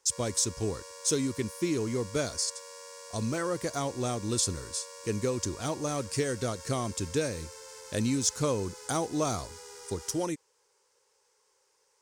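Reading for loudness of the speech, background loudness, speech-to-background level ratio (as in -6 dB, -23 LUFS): -31.5 LUFS, -45.5 LUFS, 14.0 dB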